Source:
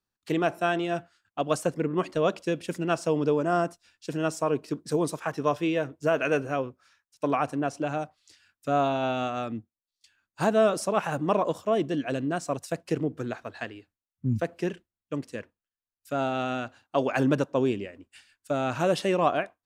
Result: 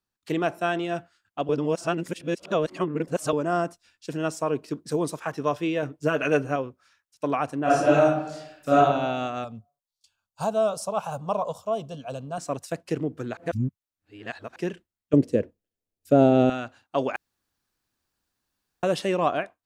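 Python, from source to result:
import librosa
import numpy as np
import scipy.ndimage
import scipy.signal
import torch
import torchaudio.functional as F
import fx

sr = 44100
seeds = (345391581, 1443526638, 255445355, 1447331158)

y = fx.comb(x, sr, ms=6.8, depth=0.65, at=(5.82, 6.56))
y = fx.reverb_throw(y, sr, start_s=7.63, length_s=1.13, rt60_s=0.89, drr_db=-9.5)
y = fx.fixed_phaser(y, sr, hz=780.0, stages=4, at=(9.44, 12.38))
y = fx.low_shelf_res(y, sr, hz=730.0, db=12.5, q=1.5, at=(15.13, 16.5))
y = fx.edit(y, sr, fx.reverse_span(start_s=1.49, length_s=1.84),
    fx.reverse_span(start_s=13.37, length_s=1.19),
    fx.room_tone_fill(start_s=17.16, length_s=1.67), tone=tone)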